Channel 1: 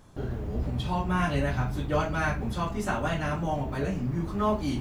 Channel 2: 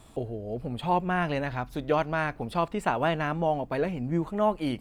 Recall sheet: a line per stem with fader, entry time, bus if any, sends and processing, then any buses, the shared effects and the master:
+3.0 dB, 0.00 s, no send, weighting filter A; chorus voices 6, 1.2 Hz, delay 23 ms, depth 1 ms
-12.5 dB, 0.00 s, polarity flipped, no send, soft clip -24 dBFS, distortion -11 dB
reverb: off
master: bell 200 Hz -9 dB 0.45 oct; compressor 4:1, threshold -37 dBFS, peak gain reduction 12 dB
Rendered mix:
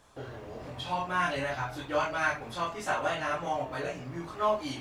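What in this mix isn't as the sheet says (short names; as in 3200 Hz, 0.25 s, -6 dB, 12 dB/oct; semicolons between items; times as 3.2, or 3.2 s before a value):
stem 2: polarity flipped; master: missing compressor 4:1, threshold -37 dBFS, peak gain reduction 12 dB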